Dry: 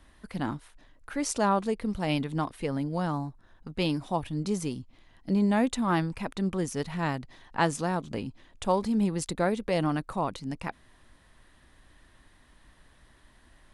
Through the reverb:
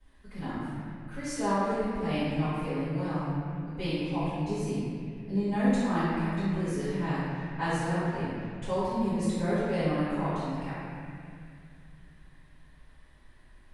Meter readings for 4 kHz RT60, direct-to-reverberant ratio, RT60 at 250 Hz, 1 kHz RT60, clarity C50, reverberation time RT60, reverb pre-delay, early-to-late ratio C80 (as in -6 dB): 2.0 s, -19.0 dB, 3.0 s, 2.2 s, -5.0 dB, 2.3 s, 3 ms, -2.5 dB